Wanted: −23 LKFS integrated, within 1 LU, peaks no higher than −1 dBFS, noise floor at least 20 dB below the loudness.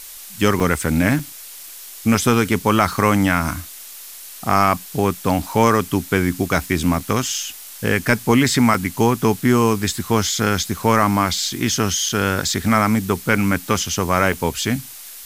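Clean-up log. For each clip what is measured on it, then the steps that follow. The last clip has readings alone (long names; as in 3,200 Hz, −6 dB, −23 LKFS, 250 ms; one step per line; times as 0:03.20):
number of dropouts 8; longest dropout 3.3 ms; background noise floor −37 dBFS; target noise floor −39 dBFS; integrated loudness −18.5 LKFS; sample peak −1.5 dBFS; target loudness −23.0 LKFS
→ repair the gap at 0:00.60/0:01.19/0:07.00/0:08.74/0:10.63/0:12.09/0:13.36/0:14.33, 3.3 ms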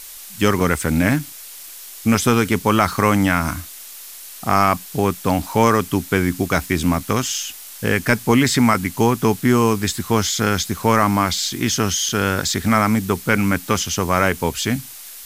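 number of dropouts 0; background noise floor −37 dBFS; target noise floor −39 dBFS
→ broadband denoise 6 dB, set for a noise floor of −37 dBFS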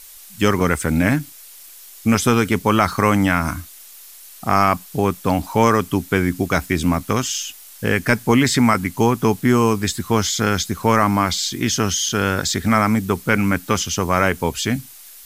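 background noise floor −42 dBFS; integrated loudness −18.5 LKFS; sample peak −1.5 dBFS; target loudness −23.0 LKFS
→ level −4.5 dB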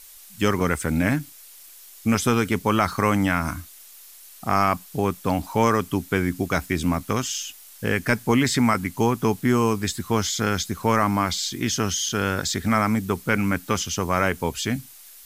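integrated loudness −23.0 LKFS; sample peak −6.0 dBFS; background noise floor −46 dBFS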